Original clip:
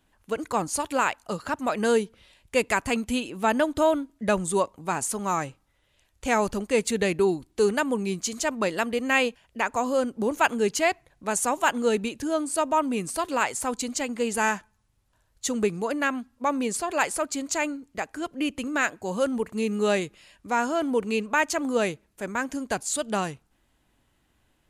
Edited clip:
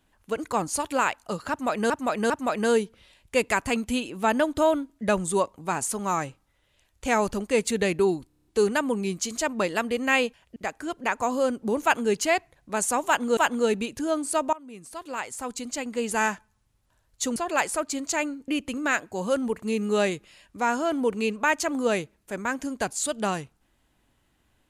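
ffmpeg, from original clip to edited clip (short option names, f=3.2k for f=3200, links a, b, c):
-filter_complex "[0:a]asplit=15[a][b][c][d][e][f][g][h][i][j][k][l][m][n][o];[a]atrim=end=1.902[p];[b]atrim=start=1.498:end=1.902[q];[c]atrim=start=1.498:end=7.502[r];[d]atrim=start=7.468:end=7.502[s];[e]atrim=start=7.468:end=7.502[t];[f]atrim=start=7.468:end=7.502[u];[g]atrim=start=7.468:end=7.502[v];[h]atrim=start=7.468:end=7.502[w];[i]atrim=start=7.468:end=9.582[x];[j]atrim=start=17.898:end=18.382[y];[k]atrim=start=9.578:end=11.912[z];[l]atrim=start=11.598:end=12.76,asetpts=PTS-STARTPTS,afade=t=out:st=1.158:d=0.004:c=hsin:silence=0.0707946[aa];[m]atrim=start=12.76:end=15.592,asetpts=PTS-STARTPTS,afade=t=in:d=1.76:silence=0.0707946[ab];[n]atrim=start=16.778:end=17.902[ac];[o]atrim=start=18.378[ad];[p][q]acrossfade=d=0.004:c1=hsin:c2=hsin[ae];[ae][r]acrossfade=d=0.004:c1=hsin:c2=hsin[af];[af][s]acrossfade=d=0.004:c1=hsin:c2=hsin[ag];[ag][t]acrossfade=d=0.004:c1=hsin:c2=hsin[ah];[ah][u]acrossfade=d=0.004:c1=hsin:c2=hsin[ai];[ai][v]acrossfade=d=0.004:c1=hsin:c2=hsin[aj];[aj][w]acrossfade=d=0.004:c1=hsin:c2=hsin[ak];[ak][x]acrossfade=d=0.004:c1=hsin:c2=hsin[al];[al][y]acrossfade=d=0.004:c1=hsin:c2=hsin[am];[am][z]acrossfade=d=0.004:c1=hsin:c2=hsin[an];[aa][ab]concat=n=2:v=0:a=1[ao];[an][ao]acrossfade=d=0.004:c1=hsin:c2=hsin[ap];[ap][ac]acrossfade=d=0.004:c1=hsin:c2=hsin[aq];[aq][ad]acrossfade=d=0.004:c1=hsin:c2=hsin"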